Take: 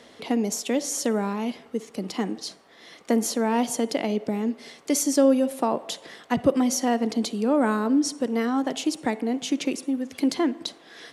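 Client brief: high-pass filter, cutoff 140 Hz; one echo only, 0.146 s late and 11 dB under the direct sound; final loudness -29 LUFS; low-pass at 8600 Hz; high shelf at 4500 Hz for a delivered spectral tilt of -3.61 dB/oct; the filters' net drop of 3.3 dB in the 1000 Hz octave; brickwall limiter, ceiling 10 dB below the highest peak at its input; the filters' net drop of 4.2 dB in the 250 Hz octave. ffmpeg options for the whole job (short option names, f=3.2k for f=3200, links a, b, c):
-af "highpass=140,lowpass=8.6k,equalizer=f=250:t=o:g=-4,equalizer=f=1k:t=o:g=-4,highshelf=f=4.5k:g=-5,alimiter=limit=-20.5dB:level=0:latency=1,aecho=1:1:146:0.282,volume=2dB"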